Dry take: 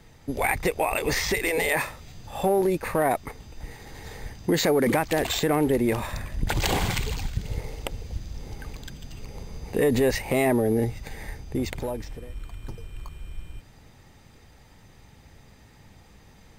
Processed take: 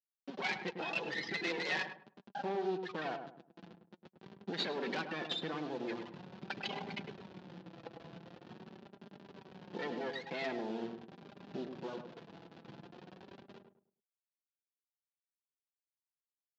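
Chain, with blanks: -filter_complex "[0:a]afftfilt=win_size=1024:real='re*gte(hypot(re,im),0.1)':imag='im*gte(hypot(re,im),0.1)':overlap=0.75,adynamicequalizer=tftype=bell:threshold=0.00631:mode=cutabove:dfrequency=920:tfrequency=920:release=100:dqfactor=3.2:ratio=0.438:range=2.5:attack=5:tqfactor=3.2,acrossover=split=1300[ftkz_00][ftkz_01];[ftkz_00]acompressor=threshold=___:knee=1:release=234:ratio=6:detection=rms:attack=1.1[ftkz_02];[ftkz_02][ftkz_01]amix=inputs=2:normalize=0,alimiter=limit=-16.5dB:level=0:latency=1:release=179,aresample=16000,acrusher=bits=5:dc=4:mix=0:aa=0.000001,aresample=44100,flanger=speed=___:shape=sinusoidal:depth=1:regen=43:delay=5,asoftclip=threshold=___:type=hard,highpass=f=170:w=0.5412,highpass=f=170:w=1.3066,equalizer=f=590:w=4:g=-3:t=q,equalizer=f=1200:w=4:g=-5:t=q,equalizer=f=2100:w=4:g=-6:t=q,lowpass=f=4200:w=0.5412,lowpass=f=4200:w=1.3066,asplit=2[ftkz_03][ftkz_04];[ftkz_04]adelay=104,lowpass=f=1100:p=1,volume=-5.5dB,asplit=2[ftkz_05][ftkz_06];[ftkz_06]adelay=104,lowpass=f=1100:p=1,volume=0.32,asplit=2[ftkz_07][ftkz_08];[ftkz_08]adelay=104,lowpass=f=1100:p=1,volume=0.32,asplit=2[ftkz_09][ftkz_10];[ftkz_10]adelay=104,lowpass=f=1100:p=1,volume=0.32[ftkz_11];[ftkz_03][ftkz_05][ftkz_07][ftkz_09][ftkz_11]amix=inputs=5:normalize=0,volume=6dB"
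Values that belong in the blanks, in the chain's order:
-33dB, 0.44, -32dB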